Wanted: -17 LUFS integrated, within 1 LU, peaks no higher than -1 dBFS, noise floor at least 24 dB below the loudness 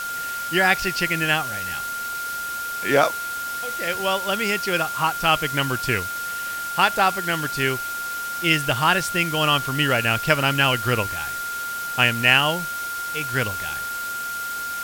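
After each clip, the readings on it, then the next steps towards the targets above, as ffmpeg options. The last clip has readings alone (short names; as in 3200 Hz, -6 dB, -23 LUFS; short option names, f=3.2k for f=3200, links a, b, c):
steady tone 1400 Hz; tone level -27 dBFS; noise floor -29 dBFS; noise floor target -46 dBFS; loudness -22.0 LUFS; peak -1.5 dBFS; loudness target -17.0 LUFS
-> -af "bandreject=f=1.4k:w=30"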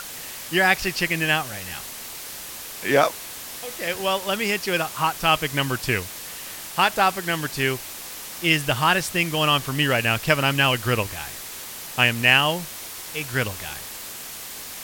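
steady tone none; noise floor -36 dBFS; noise floor target -46 dBFS
-> -af "afftdn=nr=10:nf=-36"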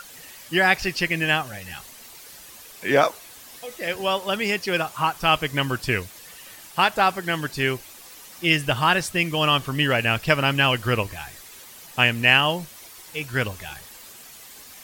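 noise floor -45 dBFS; noise floor target -46 dBFS
-> -af "afftdn=nr=6:nf=-45"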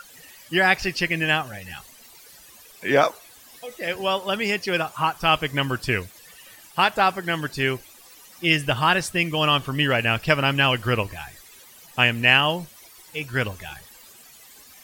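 noise floor -49 dBFS; loudness -22.0 LUFS; peak -2.5 dBFS; loudness target -17.0 LUFS
-> -af "volume=5dB,alimiter=limit=-1dB:level=0:latency=1"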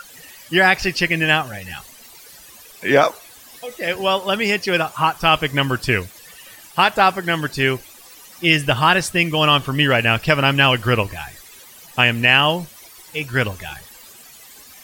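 loudness -17.5 LUFS; peak -1.0 dBFS; noise floor -44 dBFS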